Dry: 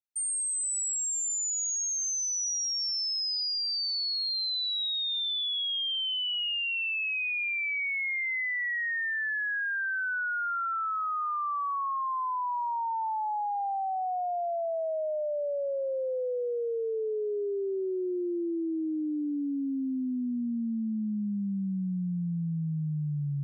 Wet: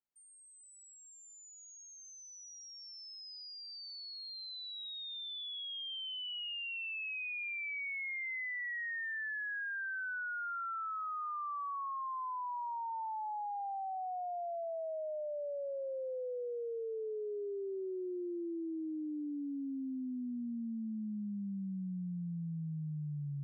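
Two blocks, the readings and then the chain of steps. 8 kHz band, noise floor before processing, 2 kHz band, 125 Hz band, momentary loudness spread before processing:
under -20 dB, -31 dBFS, -8.5 dB, no reading, 4 LU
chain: Bessel low-pass 1.3 kHz; peak limiter -33.5 dBFS, peak gain reduction 5.5 dB; compression 6:1, threshold -40 dBFS, peak gain reduction 5 dB; trim +2 dB

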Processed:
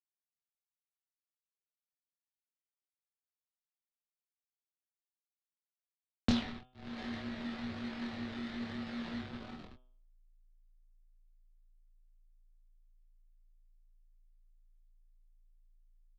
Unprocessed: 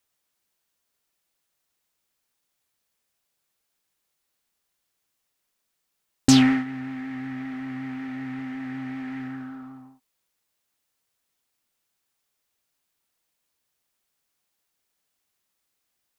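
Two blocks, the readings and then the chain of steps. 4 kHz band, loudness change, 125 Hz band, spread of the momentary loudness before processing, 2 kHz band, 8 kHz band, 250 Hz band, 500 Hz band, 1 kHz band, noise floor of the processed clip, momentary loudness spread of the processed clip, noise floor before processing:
-13.0 dB, -14.0 dB, -13.0 dB, 19 LU, -12.0 dB, -26.0 dB, -14.5 dB, -5.5 dB, -12.0 dB, under -85 dBFS, 14 LU, -78 dBFS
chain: reverb removal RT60 1.3 s; in parallel at -8 dB: decimation with a swept rate 18×, swing 100% 1.1 Hz; on the sum: dynamic bell 150 Hz, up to +4 dB, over -34 dBFS, Q 1.5; compression 3:1, threshold -41 dBFS, peak gain reduction 24 dB; hysteresis with a dead band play -38 dBFS; frequency shift -28 Hz; resonant low-pass 4 kHz, resonance Q 2.6; doubling 24 ms -4 dB; de-hum 126.4 Hz, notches 29; trim +5.5 dB

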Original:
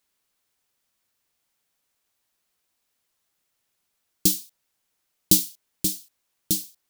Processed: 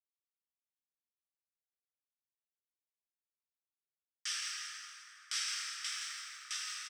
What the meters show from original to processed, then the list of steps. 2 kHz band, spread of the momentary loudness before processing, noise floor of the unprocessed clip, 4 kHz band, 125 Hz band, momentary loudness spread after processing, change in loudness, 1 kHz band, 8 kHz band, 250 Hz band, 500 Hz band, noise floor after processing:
+10.0 dB, 12 LU, -76 dBFS, -6.0 dB, under -40 dB, 10 LU, -16.0 dB, no reading, -13.0 dB, under -40 dB, under -40 dB, under -85 dBFS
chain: comb filter that takes the minimum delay 0.37 ms; low-pass 7.3 kHz 24 dB/octave; treble shelf 2.8 kHz -9 dB; peak limiter -19 dBFS, peak gain reduction 10 dB; bit crusher 11-bit; rippled Chebyshev high-pass 1.2 kHz, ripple 3 dB; frequency-shifting echo 167 ms, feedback 44%, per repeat +43 Hz, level -7.5 dB; plate-style reverb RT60 4.1 s, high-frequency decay 0.45×, DRR -6.5 dB

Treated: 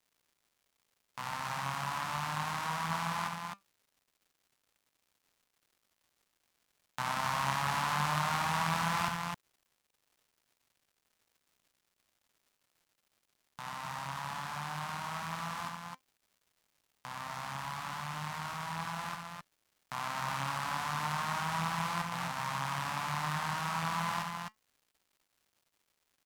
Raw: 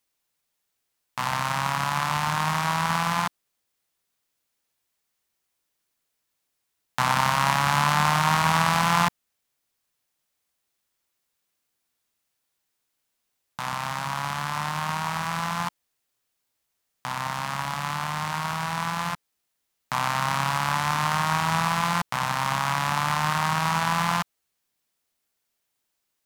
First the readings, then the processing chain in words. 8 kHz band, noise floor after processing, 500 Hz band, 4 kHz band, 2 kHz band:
-10.5 dB, -82 dBFS, -10.5 dB, -10.5 dB, -10.0 dB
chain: flange 0.11 Hz, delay 0.3 ms, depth 6.5 ms, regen +82%; loudspeakers at several distances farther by 25 m -6 dB, 89 m -4 dB; crackle 320 per s -52 dBFS; trim -8 dB

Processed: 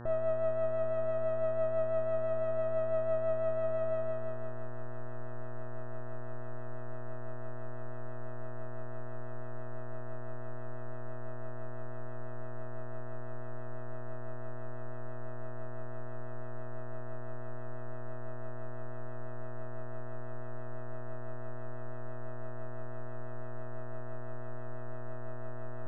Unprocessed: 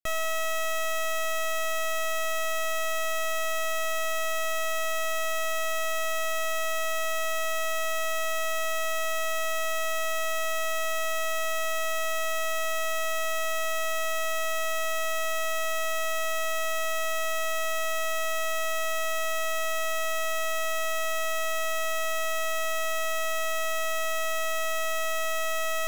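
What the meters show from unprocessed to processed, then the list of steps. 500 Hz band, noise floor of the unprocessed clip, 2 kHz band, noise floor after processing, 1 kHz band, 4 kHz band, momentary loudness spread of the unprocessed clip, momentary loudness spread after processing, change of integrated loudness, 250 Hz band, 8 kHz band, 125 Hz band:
-4.5 dB, -27 dBFS, -23.0 dB, -34 dBFS, -15.0 dB, under -35 dB, 0 LU, 12 LU, -11.0 dB, +10.0 dB, under -40 dB, no reading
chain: peak limiter -38.5 dBFS, peak gain reduction 11.5 dB; rotary cabinet horn 6 Hz; low-pass sweep 620 Hz -> 310 Hz, 3.93–4.72 s; mains buzz 120 Hz, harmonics 15, -55 dBFS -5 dB/octave; trim +10 dB

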